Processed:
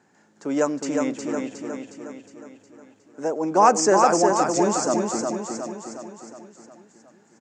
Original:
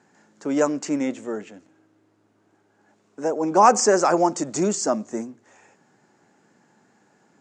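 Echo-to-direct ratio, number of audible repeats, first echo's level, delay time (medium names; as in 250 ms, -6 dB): -2.5 dB, 6, -4.0 dB, 362 ms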